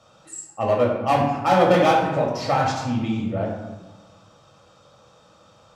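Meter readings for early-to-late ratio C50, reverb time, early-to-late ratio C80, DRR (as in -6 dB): 3.0 dB, 1.3 s, 5.5 dB, -2.5 dB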